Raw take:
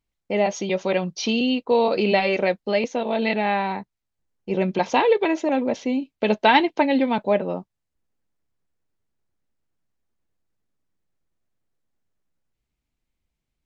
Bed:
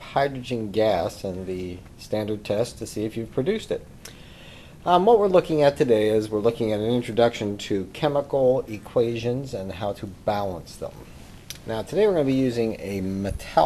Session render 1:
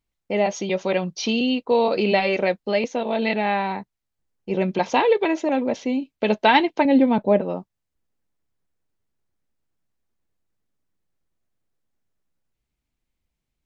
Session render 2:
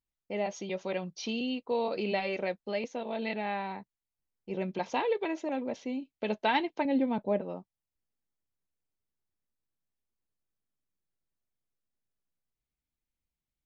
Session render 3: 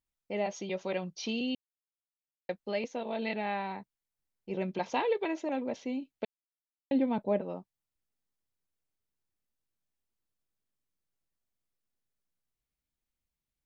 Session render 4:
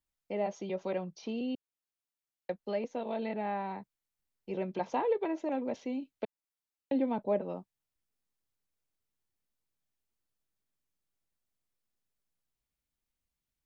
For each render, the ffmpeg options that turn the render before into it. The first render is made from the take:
ffmpeg -i in.wav -filter_complex "[0:a]asettb=1/sr,asplit=3[link_01][link_02][link_03];[link_01]atrim=end=6.854[link_04];[link_02]atrim=start=6.85:end=7.41,asetpts=PTS-STARTPTS,afade=type=in:duration=0.004:curve=qsin,afade=type=out:start_time=0.556:duration=0.004:curve=qsin,tiltshelf=frequency=840:gain=6[link_05];[link_03]atrim=start=7.406[link_06];[link_04][link_05]acrossfade=duration=0.004:curve1=hsin:curve2=qsin[link_07];[link_07][link_06]acrossfade=duration=0.004:curve1=qsin:curve2=hsin" out.wav
ffmpeg -i in.wav -af "volume=-11.5dB" out.wav
ffmpeg -i in.wav -filter_complex "[0:a]asplit=5[link_01][link_02][link_03][link_04][link_05];[link_01]atrim=end=1.55,asetpts=PTS-STARTPTS,afade=type=out:start_time=1.546:duration=0.004:curve=hsin[link_06];[link_02]atrim=start=1.55:end=2.49,asetpts=PTS-STARTPTS,volume=0[link_07];[link_03]atrim=start=2.49:end=6.25,asetpts=PTS-STARTPTS,afade=type=in:duration=0.004:curve=hsin,afade=type=out:start_time=3.756:duration=0.004:curve=hsin[link_08];[link_04]atrim=start=6.25:end=6.91,asetpts=PTS-STARTPTS,volume=0[link_09];[link_05]atrim=start=6.91,asetpts=PTS-STARTPTS,afade=type=in:duration=0.004:curve=hsin[link_10];[link_06][link_07][link_08][link_09][link_10]concat=n=5:v=0:a=1" out.wav
ffmpeg -i in.wav -filter_complex "[0:a]acrossover=split=240|1500[link_01][link_02][link_03];[link_01]alimiter=level_in=16dB:limit=-24dB:level=0:latency=1,volume=-16dB[link_04];[link_03]acompressor=threshold=-53dB:ratio=6[link_05];[link_04][link_02][link_05]amix=inputs=3:normalize=0" out.wav

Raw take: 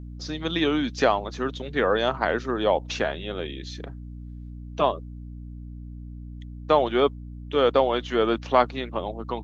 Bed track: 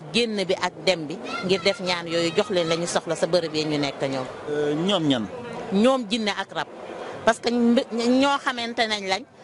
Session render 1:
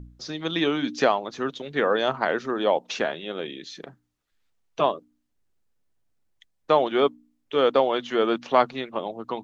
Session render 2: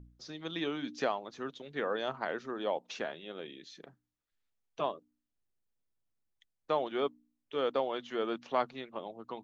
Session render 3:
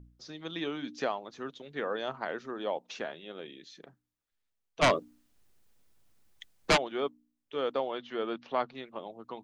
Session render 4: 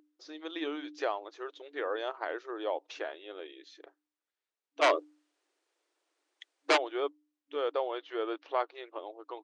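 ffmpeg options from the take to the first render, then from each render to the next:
ffmpeg -i in.wav -af "bandreject=frequency=60:width_type=h:width=4,bandreject=frequency=120:width_type=h:width=4,bandreject=frequency=180:width_type=h:width=4,bandreject=frequency=240:width_type=h:width=4,bandreject=frequency=300:width_type=h:width=4" out.wav
ffmpeg -i in.wav -af "volume=-11.5dB" out.wav
ffmpeg -i in.wav -filter_complex "[0:a]asplit=3[link_01][link_02][link_03];[link_01]afade=type=out:start_time=4.81:duration=0.02[link_04];[link_02]aeval=exprs='0.133*sin(PI/2*5.01*val(0)/0.133)':channel_layout=same,afade=type=in:start_time=4.81:duration=0.02,afade=type=out:start_time=6.76:duration=0.02[link_05];[link_03]afade=type=in:start_time=6.76:duration=0.02[link_06];[link_04][link_05][link_06]amix=inputs=3:normalize=0,asettb=1/sr,asplit=3[link_07][link_08][link_09];[link_07]atrim=end=7.914[link_10];[link_08]atrim=start=7.91:end=8.75,asetpts=PTS-STARTPTS,afade=type=in:duration=0.004:curve=qsin,afade=type=out:start_time=0.836:duration=0.004:curve=qsin,lowpass=frequency=5200:width=0.5412,lowpass=frequency=5200:width=1.3066[link_11];[link_09]atrim=start=8.746[link_12];[link_10][link_11]acrossfade=duration=0.004:curve1=hsin:curve2=qsin[link_13];[link_13][link_12]acrossfade=duration=0.004:curve1=qsin:curve2=hsin" out.wav
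ffmpeg -i in.wav -af "highshelf=frequency=5900:gain=-9.5,afftfilt=real='re*between(b*sr/4096,290,10000)':imag='im*between(b*sr/4096,290,10000)':win_size=4096:overlap=0.75" out.wav

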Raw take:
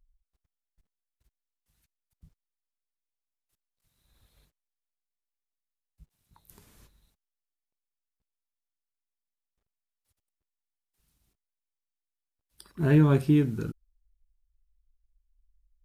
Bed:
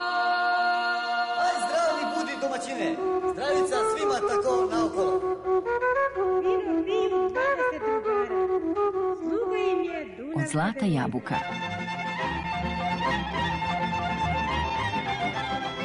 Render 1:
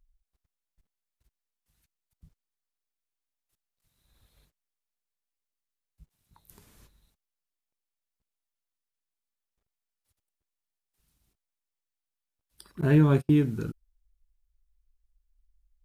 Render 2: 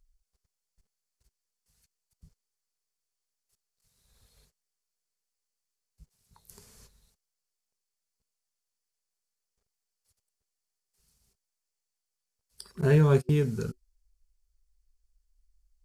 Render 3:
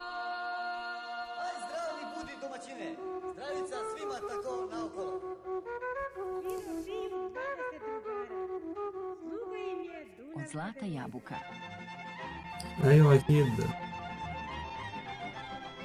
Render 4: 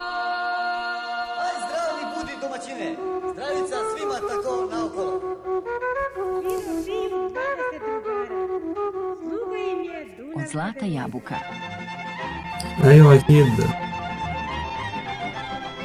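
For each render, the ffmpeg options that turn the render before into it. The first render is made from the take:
ffmpeg -i in.wav -filter_complex "[0:a]asettb=1/sr,asplit=3[link_01][link_02][link_03];[link_01]atrim=end=12.814[link_04];[link_02]atrim=start=12.81:end=13.4,asetpts=PTS-STARTPTS,afade=type=in:duration=0.004:curve=qsin,afade=type=out:start_time=0.586:duration=0.004:curve=qsin,agate=range=-35dB:threshold=-29dB:ratio=16:release=100:detection=peak[link_05];[link_03]atrim=start=13.396[link_06];[link_04][link_05]acrossfade=duration=0.004:curve1=hsin:curve2=qsin[link_07];[link_07][link_06]acrossfade=duration=0.004:curve1=qsin:curve2=hsin" out.wav
ffmpeg -i in.wav -af "superequalizer=6b=0.282:7b=1.58:14b=2.51:15b=2.51:16b=1.78" out.wav
ffmpeg -i in.wav -i bed.wav -filter_complex "[1:a]volume=-13dB[link_01];[0:a][link_01]amix=inputs=2:normalize=0" out.wav
ffmpeg -i in.wav -af "volume=11.5dB,alimiter=limit=-2dB:level=0:latency=1" out.wav

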